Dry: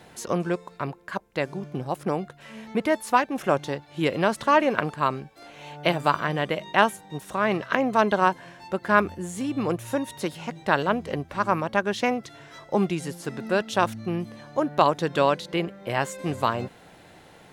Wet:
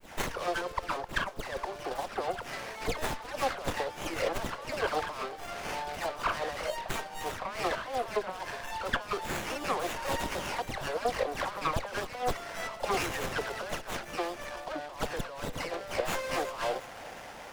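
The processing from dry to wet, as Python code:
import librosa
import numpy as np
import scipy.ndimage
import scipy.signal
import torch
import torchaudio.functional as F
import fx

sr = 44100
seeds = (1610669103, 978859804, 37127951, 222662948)

p1 = scipy.signal.sosfilt(scipy.signal.butter(4, 570.0, 'highpass', fs=sr, output='sos'), x)
p2 = fx.peak_eq(p1, sr, hz=4300.0, db=12.5, octaves=0.53)
p3 = fx.over_compress(p2, sr, threshold_db=-35.0, ratio=-1.0)
p4 = fx.transient(p3, sr, attack_db=5, sustain_db=1)
p5 = fx.dispersion(p4, sr, late='lows', ms=120.0, hz=2700.0)
p6 = p5 + fx.echo_feedback(p5, sr, ms=361, feedback_pct=54, wet_db=-18.0, dry=0)
y = fx.running_max(p6, sr, window=9)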